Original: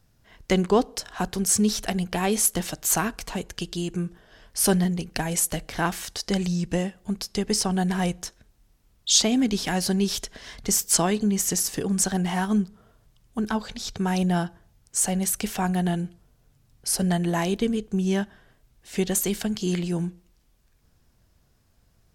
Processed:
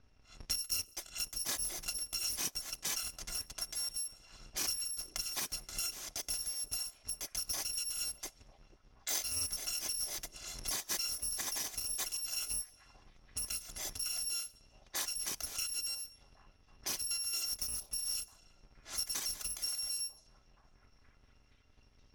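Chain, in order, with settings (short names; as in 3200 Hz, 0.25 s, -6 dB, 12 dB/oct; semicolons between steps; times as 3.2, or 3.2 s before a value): FFT order left unsorted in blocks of 256 samples; bell 5900 Hz +9 dB 0.42 oct; compressor 3:1, threshold -39 dBFS, peak gain reduction 19.5 dB; delay with a stepping band-pass 0.473 s, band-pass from 390 Hz, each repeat 0.7 oct, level -11.5 dB; low-pass opened by the level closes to 2400 Hz, open at -36.5 dBFS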